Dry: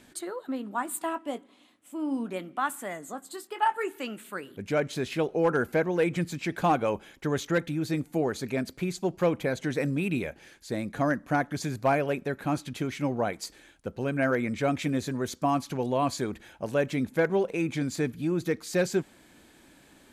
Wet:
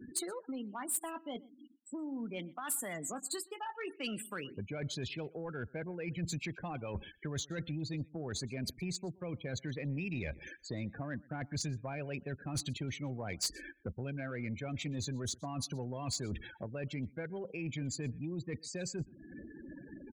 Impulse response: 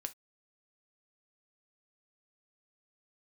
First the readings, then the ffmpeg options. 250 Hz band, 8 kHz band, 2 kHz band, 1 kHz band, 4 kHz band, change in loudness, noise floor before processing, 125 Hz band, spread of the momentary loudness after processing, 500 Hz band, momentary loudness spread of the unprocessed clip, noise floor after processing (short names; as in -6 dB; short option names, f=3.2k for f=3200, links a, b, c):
-11.0 dB, +1.0 dB, -11.5 dB, -16.0 dB, -2.0 dB, -10.5 dB, -57 dBFS, -5.5 dB, 7 LU, -15.0 dB, 11 LU, -62 dBFS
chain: -filter_complex "[0:a]areverse,acompressor=threshold=-36dB:ratio=12,areverse,afftdn=nr=14:nf=-52,acrossover=split=130|3000[a][b][c];[b]acompressor=threshold=-52dB:ratio=5[d];[a][d][c]amix=inputs=3:normalize=0,afftfilt=real='re*gte(hypot(re,im),0.00141)':imag='im*gte(hypot(re,im),0.00141)':win_size=1024:overlap=0.75,asplit=2[e][f];[f]adelay=122.4,volume=-25dB,highshelf=f=4k:g=-2.76[g];[e][g]amix=inputs=2:normalize=0,asoftclip=type=tanh:threshold=-38.5dB,volume=11dB"